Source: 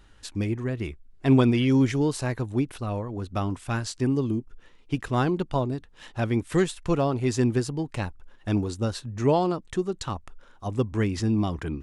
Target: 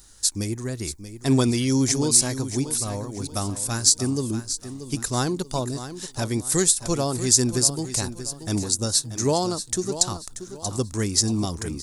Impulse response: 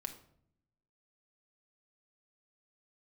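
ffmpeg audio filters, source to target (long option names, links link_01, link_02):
-af "aexciter=amount=9.8:drive=6.6:freq=4300,aecho=1:1:633|1266|1899|2532:0.266|0.0905|0.0308|0.0105,volume=-1dB"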